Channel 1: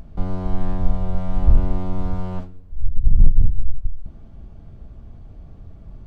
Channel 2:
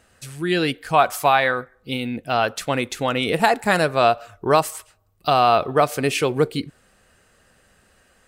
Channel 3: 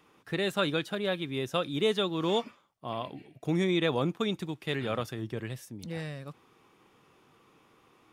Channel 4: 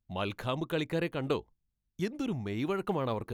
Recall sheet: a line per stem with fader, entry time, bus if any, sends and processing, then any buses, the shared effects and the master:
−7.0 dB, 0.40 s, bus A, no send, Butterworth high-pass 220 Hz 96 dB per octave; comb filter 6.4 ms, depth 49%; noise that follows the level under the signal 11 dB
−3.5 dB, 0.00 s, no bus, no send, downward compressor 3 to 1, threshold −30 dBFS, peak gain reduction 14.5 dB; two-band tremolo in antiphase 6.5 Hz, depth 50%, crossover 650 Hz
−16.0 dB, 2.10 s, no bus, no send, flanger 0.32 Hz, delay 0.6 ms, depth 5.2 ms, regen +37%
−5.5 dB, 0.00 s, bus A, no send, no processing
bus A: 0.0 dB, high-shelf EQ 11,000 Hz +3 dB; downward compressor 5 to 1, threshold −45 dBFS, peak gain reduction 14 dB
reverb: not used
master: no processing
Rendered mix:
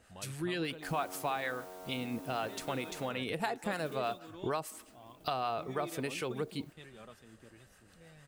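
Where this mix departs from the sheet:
stem 1: entry 0.40 s → 0.65 s
stem 4 −5.5 dB → −14.5 dB

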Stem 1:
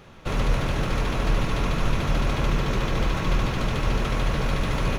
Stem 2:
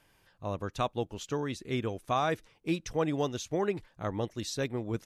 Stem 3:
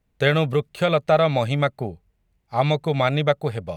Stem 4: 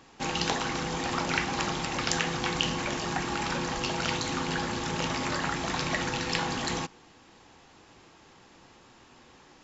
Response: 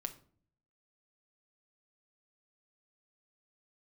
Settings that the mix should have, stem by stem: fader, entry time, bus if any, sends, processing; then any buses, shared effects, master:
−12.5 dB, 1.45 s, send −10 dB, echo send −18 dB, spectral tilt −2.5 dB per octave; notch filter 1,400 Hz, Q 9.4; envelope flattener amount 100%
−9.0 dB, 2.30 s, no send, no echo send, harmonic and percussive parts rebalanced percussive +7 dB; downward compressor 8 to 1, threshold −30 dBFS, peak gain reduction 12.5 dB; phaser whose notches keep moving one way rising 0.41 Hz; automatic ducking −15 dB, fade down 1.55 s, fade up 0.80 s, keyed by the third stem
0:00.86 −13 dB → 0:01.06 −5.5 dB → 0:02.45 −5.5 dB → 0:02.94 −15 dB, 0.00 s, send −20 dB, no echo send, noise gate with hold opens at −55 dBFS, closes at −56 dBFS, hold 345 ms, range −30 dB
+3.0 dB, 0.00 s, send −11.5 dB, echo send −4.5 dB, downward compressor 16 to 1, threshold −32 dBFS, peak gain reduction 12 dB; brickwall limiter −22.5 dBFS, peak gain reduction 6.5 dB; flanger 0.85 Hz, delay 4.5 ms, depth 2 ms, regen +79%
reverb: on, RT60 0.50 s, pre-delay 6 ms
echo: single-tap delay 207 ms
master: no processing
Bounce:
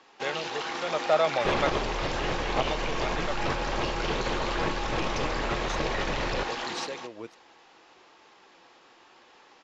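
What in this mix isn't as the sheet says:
stem 2 −9.0 dB → 0.0 dB
stem 4: missing downward compressor 16 to 1, threshold −32 dBFS, peak gain reduction 12 dB
master: extra three-way crossover with the lows and the highs turned down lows −18 dB, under 330 Hz, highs −24 dB, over 6,300 Hz

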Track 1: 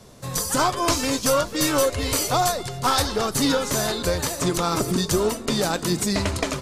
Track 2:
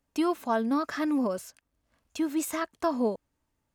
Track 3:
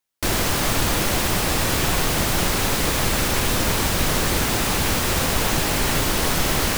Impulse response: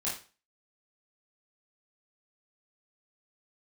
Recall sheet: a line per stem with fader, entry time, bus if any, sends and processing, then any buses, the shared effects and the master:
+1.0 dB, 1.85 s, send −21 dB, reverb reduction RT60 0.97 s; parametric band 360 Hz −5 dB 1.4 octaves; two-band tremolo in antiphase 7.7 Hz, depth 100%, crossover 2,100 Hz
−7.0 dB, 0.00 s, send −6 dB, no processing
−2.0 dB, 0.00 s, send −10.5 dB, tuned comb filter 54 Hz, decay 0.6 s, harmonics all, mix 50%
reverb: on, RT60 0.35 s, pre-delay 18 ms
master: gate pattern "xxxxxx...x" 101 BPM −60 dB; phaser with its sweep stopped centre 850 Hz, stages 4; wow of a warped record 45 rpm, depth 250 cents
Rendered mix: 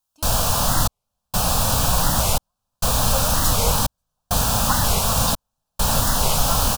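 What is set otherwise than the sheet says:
stem 2 −7.0 dB → −18.0 dB
stem 3 −2.0 dB → +6.0 dB

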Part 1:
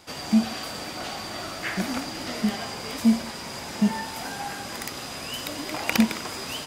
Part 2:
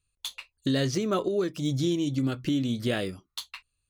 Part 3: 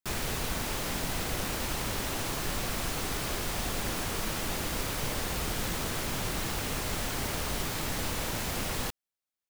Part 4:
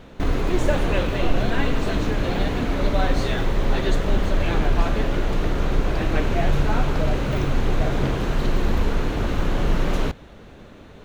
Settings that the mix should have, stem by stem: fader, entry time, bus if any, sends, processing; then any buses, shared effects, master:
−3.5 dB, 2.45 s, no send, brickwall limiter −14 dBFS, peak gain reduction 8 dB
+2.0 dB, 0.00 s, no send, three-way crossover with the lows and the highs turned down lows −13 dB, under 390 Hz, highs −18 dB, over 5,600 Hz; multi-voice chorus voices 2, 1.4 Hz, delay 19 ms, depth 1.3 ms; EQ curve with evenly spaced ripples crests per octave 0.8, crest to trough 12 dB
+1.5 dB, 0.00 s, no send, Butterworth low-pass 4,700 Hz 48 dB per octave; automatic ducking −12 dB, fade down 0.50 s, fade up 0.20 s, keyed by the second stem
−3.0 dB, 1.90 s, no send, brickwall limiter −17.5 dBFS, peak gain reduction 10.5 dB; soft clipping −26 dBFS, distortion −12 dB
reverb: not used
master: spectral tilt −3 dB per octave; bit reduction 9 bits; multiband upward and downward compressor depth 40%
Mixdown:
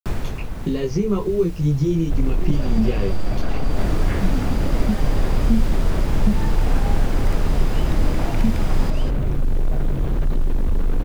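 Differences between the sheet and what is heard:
stem 2: missing three-way crossover with the lows and the highs turned down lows −13 dB, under 390 Hz, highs −18 dB, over 5,600 Hz
stem 3: missing Butterworth low-pass 4,700 Hz 48 dB per octave

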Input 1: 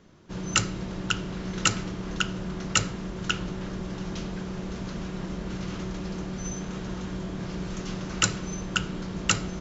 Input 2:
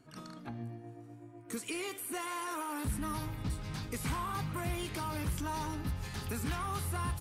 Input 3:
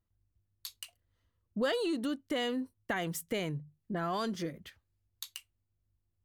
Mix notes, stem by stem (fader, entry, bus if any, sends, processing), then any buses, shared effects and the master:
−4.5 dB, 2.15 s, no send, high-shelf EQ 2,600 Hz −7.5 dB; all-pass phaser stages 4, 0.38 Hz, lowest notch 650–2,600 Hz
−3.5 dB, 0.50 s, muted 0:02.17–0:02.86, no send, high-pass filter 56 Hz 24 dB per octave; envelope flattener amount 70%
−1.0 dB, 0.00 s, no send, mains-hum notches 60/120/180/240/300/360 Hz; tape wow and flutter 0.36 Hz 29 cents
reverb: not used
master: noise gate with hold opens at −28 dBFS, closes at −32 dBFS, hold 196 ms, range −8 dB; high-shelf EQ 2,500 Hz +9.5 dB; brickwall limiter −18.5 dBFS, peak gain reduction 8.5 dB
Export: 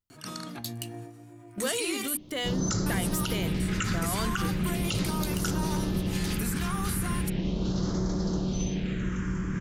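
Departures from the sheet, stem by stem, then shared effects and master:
stem 1 −4.5 dB → +4.0 dB
stem 2: entry 0.50 s → 0.10 s

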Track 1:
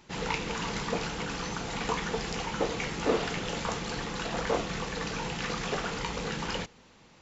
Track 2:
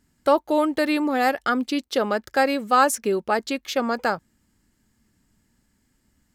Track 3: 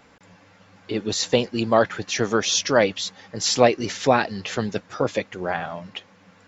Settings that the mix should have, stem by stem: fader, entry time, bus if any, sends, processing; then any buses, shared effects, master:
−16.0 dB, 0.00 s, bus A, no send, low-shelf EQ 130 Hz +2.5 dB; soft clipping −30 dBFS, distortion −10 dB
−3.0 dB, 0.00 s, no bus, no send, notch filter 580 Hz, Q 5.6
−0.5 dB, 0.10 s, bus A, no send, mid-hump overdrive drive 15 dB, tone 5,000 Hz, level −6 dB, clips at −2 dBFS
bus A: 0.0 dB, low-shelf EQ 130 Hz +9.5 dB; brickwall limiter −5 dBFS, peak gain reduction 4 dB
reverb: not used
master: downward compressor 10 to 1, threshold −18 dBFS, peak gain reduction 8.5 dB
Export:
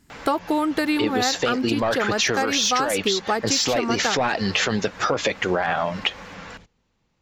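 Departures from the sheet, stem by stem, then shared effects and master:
stem 2 −3.0 dB → +7.0 dB
stem 3 −0.5 dB → +7.5 dB

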